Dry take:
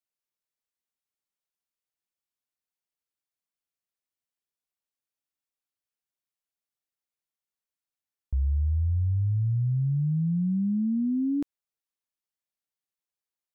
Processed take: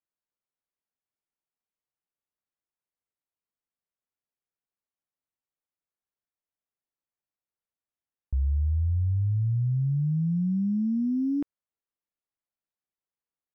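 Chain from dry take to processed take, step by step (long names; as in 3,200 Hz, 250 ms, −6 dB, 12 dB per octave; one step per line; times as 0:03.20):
adaptive Wiener filter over 9 samples
linearly interpolated sample-rate reduction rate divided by 8×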